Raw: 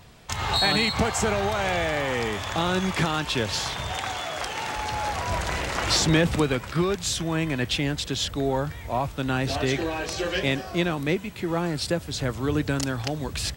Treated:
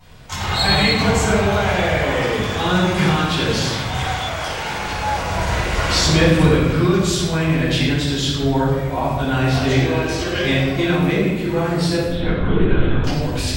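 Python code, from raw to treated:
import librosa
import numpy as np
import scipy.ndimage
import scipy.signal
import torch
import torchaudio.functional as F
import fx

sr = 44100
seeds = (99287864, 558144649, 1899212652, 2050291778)

y = fx.lpc_vocoder(x, sr, seeds[0], excitation='whisper', order=10, at=(12.06, 13.04))
y = fx.room_shoebox(y, sr, seeds[1], volume_m3=810.0, walls='mixed', distance_m=7.7)
y = F.gain(torch.from_numpy(y), -7.5).numpy()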